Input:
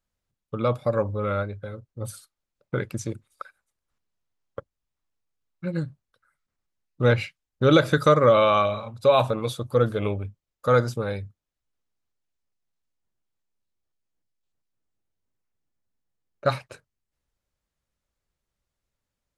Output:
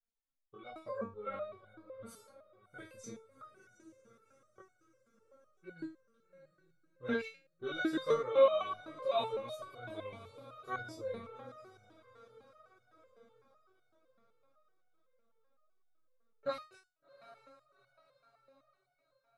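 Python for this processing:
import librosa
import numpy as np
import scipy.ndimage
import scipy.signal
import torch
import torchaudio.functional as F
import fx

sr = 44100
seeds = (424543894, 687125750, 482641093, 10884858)

y = fx.high_shelf(x, sr, hz=9200.0, db=-5.5)
y = fx.echo_diffused(y, sr, ms=763, feedback_pct=49, wet_db=-14.0)
y = fx.chorus_voices(y, sr, voices=4, hz=1.0, base_ms=22, depth_ms=3.0, mix_pct=55)
y = fx.low_shelf(y, sr, hz=130.0, db=-3.5)
y = fx.resonator_held(y, sr, hz=7.9, low_hz=230.0, high_hz=730.0)
y = y * 10.0 ** (4.0 / 20.0)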